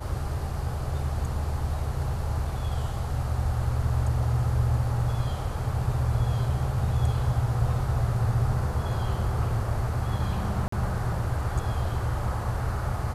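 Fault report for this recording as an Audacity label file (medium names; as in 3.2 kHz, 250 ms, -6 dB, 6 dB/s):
10.680000	10.720000	dropout 44 ms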